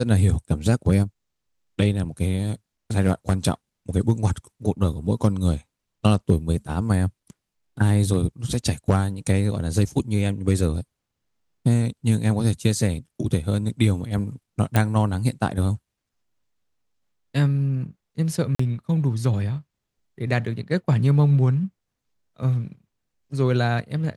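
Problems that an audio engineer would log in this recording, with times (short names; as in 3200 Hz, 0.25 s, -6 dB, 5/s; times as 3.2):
14.76 pop -7 dBFS
18.55–18.59 gap 44 ms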